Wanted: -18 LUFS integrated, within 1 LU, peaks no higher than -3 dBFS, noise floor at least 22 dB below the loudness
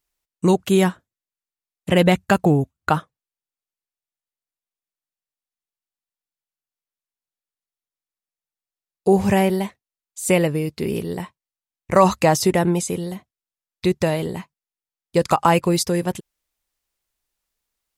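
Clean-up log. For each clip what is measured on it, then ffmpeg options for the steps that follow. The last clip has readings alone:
loudness -20.0 LUFS; peak -1.5 dBFS; loudness target -18.0 LUFS
-> -af "volume=2dB,alimiter=limit=-3dB:level=0:latency=1"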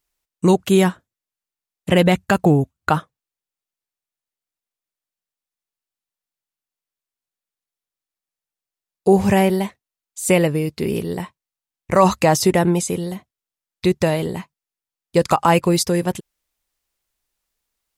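loudness -18.5 LUFS; peak -3.0 dBFS; noise floor -90 dBFS

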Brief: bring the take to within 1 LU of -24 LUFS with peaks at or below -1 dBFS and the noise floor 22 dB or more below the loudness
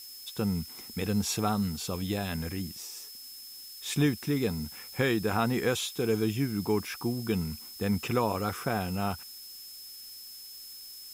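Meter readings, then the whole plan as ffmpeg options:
steady tone 5200 Hz; tone level -46 dBFS; noise floor -46 dBFS; noise floor target -53 dBFS; loudness -31.0 LUFS; peak -14.5 dBFS; loudness target -24.0 LUFS
-> -af "bandreject=f=5.2k:w=30"
-af "afftdn=nr=7:nf=-46"
-af "volume=7dB"

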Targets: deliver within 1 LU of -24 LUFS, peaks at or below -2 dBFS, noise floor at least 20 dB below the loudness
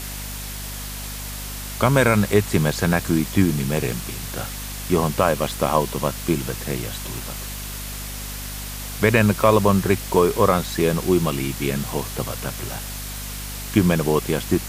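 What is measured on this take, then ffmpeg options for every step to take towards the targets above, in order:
hum 50 Hz; harmonics up to 250 Hz; hum level -32 dBFS; noise floor -32 dBFS; noise floor target -42 dBFS; loudness -22.0 LUFS; peak -2.5 dBFS; loudness target -24.0 LUFS
-> -af "bandreject=f=50:t=h:w=6,bandreject=f=100:t=h:w=6,bandreject=f=150:t=h:w=6,bandreject=f=200:t=h:w=6,bandreject=f=250:t=h:w=6"
-af "afftdn=nr=10:nf=-32"
-af "volume=-2dB"

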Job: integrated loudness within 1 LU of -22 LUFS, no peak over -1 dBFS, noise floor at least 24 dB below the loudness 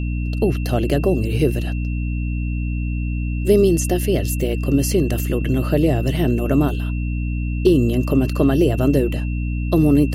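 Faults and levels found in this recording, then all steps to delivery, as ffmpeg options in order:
hum 60 Hz; harmonics up to 300 Hz; hum level -20 dBFS; steady tone 2700 Hz; tone level -37 dBFS; loudness -19.5 LUFS; peak -3.0 dBFS; loudness target -22.0 LUFS
-> -af "bandreject=f=60:t=h:w=4,bandreject=f=120:t=h:w=4,bandreject=f=180:t=h:w=4,bandreject=f=240:t=h:w=4,bandreject=f=300:t=h:w=4"
-af "bandreject=f=2.7k:w=30"
-af "volume=-2.5dB"

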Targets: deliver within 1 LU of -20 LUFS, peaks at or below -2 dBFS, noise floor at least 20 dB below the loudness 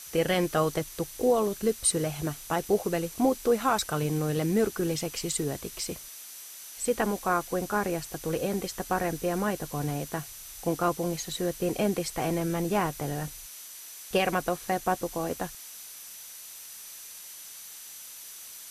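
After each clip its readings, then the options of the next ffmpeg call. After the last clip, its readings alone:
steady tone 6000 Hz; tone level -51 dBFS; noise floor -45 dBFS; noise floor target -49 dBFS; loudness -29.0 LUFS; peak -12.5 dBFS; loudness target -20.0 LUFS
-> -af "bandreject=f=6k:w=30"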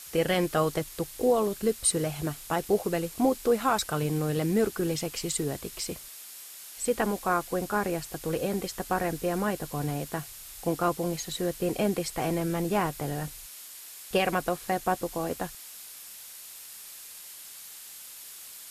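steady tone none; noise floor -45 dBFS; noise floor target -49 dBFS
-> -af "afftdn=nr=6:nf=-45"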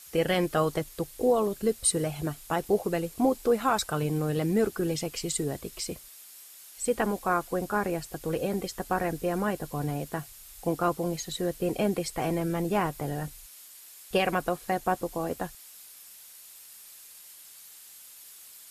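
noise floor -50 dBFS; loudness -29.0 LUFS; peak -13.0 dBFS; loudness target -20.0 LUFS
-> -af "volume=9dB"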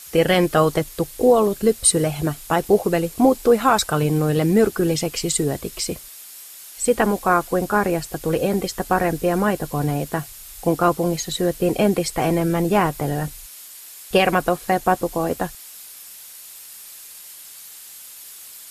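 loudness -20.0 LUFS; peak -4.0 dBFS; noise floor -41 dBFS

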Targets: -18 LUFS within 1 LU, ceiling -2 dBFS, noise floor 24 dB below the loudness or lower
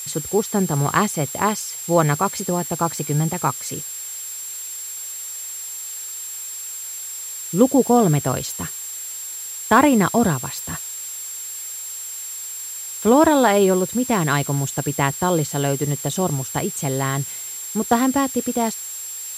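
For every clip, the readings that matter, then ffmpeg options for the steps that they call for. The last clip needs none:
steady tone 7500 Hz; tone level -30 dBFS; noise floor -32 dBFS; noise floor target -46 dBFS; loudness -21.5 LUFS; peak -2.0 dBFS; loudness target -18.0 LUFS
-> -af "bandreject=f=7.5k:w=30"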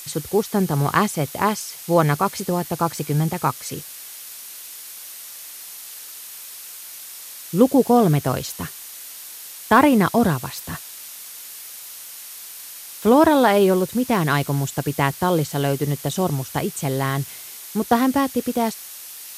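steady tone none; noise floor -38 dBFS; noise floor target -45 dBFS
-> -af "afftdn=nr=7:nf=-38"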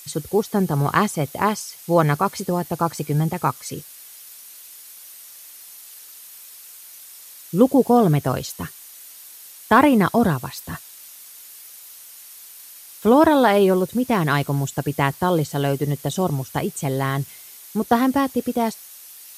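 noise floor -43 dBFS; noise floor target -45 dBFS
-> -af "afftdn=nr=6:nf=-43"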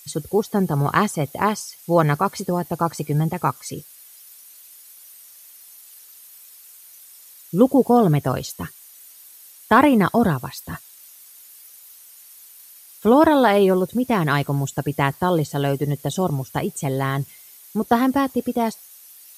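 noise floor -46 dBFS; loudness -20.5 LUFS; peak -2.5 dBFS; loudness target -18.0 LUFS
-> -af "volume=2.5dB,alimiter=limit=-2dB:level=0:latency=1"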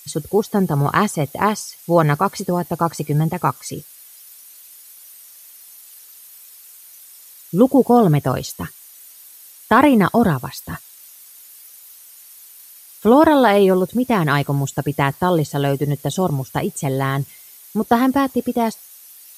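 loudness -18.0 LUFS; peak -2.0 dBFS; noise floor -44 dBFS

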